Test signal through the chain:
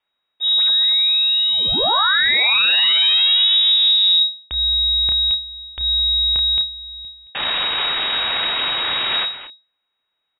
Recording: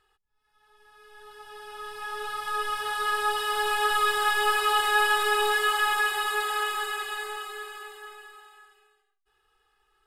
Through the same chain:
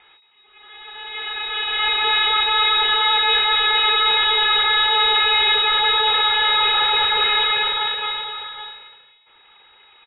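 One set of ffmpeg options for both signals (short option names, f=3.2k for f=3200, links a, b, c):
-filter_complex "[0:a]asplit=2[a][b];[b]adelay=31,volume=-11dB[c];[a][c]amix=inputs=2:normalize=0,asplit=2[d][e];[e]adelay=220,highpass=300,lowpass=3.4k,asoftclip=type=hard:threshold=-20dB,volume=-11dB[f];[d][f]amix=inputs=2:normalize=0,apsyclip=16.5dB,aeval=exprs='abs(val(0))':c=same,equalizer=f=3k:t=o:w=2.3:g=7.5,areverse,acompressor=threshold=-11dB:ratio=16,areverse,asoftclip=type=hard:threshold=-11.5dB,lowpass=f=3.2k:t=q:w=0.5098,lowpass=f=3.2k:t=q:w=0.6013,lowpass=f=3.2k:t=q:w=0.9,lowpass=f=3.2k:t=q:w=2.563,afreqshift=-3800"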